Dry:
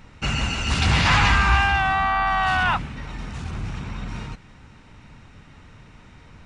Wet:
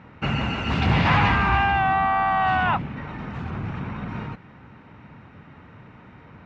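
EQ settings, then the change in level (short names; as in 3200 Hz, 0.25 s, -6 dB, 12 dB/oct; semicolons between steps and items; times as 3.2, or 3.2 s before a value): HPF 110 Hz 12 dB/oct; LPF 1900 Hz 12 dB/oct; dynamic EQ 1400 Hz, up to -6 dB, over -35 dBFS, Q 1.3; +4.0 dB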